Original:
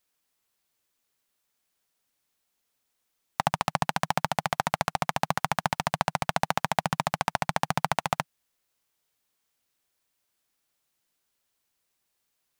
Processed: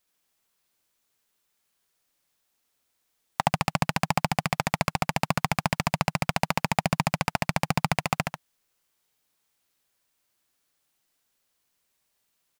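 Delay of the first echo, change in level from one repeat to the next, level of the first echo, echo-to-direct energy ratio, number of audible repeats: 71 ms, -5.5 dB, -4.0 dB, -3.0 dB, 2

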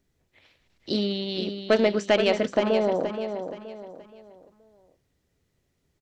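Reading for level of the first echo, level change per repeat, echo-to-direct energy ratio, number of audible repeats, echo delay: -8.0 dB, -9.0 dB, -7.5 dB, 3, 474 ms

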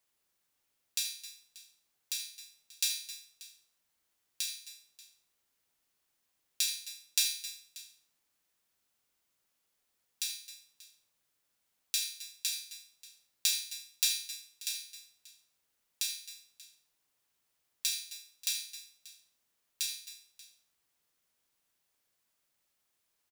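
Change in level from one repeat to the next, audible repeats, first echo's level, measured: no regular repeats, 3, -11.0 dB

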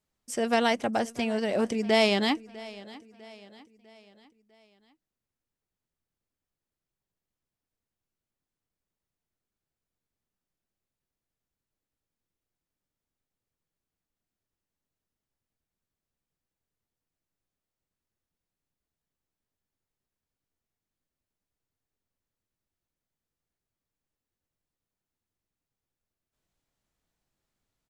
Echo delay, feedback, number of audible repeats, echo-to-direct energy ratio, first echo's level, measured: 650 ms, 47%, 3, -19.0 dB, -20.0 dB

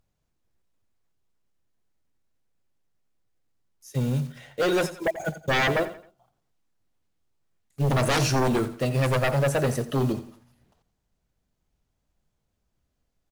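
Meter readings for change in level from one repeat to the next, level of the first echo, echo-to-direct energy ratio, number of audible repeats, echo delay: -8.5 dB, -15.0 dB, -14.5 dB, 3, 87 ms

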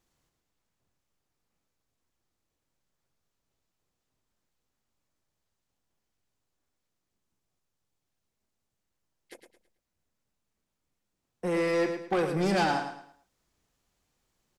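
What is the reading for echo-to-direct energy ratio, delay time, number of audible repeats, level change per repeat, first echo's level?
-7.5 dB, 109 ms, 3, -10.0 dB, -8.0 dB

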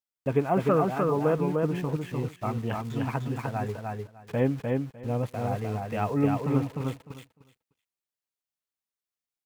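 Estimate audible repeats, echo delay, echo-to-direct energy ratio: 3, 302 ms, -3.0 dB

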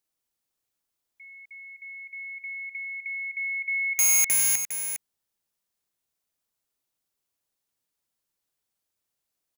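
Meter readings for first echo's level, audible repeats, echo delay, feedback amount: -9.0 dB, 1, 407 ms, no regular repeats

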